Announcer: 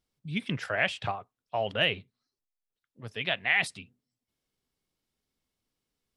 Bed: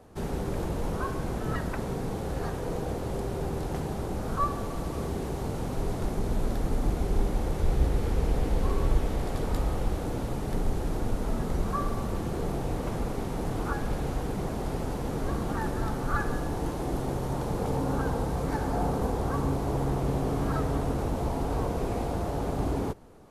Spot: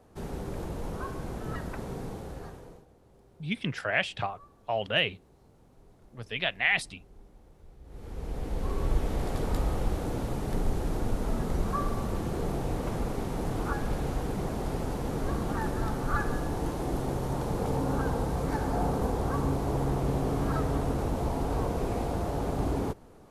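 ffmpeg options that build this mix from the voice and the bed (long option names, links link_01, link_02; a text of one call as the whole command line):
ffmpeg -i stem1.wav -i stem2.wav -filter_complex "[0:a]adelay=3150,volume=0dB[link_01];[1:a]volume=22dB,afade=type=out:start_time=2.02:duration=0.84:silence=0.0749894,afade=type=in:start_time=7.84:duration=1.4:silence=0.0446684[link_02];[link_01][link_02]amix=inputs=2:normalize=0" out.wav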